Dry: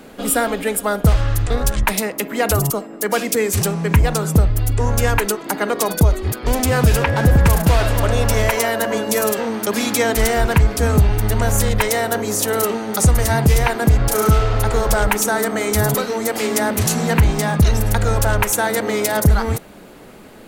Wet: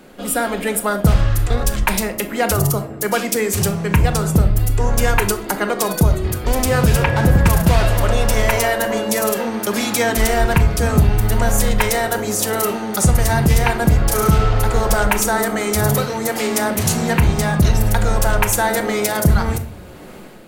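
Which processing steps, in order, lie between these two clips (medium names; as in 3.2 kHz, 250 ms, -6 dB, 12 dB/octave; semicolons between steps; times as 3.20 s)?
level rider; reverberation RT60 0.50 s, pre-delay 5 ms, DRR 7 dB; trim -4 dB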